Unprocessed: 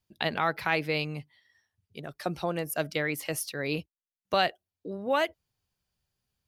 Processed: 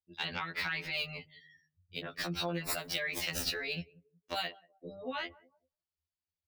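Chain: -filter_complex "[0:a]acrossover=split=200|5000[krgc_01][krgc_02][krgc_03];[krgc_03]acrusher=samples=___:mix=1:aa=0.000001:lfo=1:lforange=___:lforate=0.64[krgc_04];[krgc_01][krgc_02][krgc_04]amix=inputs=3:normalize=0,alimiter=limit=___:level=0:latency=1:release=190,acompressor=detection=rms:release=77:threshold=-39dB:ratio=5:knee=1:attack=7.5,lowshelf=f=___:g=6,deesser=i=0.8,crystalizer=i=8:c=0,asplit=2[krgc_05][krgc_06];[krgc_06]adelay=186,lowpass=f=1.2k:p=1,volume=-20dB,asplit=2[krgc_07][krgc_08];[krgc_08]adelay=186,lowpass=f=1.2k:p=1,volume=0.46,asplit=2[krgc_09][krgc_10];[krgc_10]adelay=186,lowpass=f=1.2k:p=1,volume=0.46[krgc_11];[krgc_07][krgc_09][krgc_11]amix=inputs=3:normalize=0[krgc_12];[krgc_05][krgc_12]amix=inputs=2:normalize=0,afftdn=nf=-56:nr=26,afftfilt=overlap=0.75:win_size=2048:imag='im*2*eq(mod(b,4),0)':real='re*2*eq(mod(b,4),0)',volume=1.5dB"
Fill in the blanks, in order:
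28, 28, -15.5dB, 170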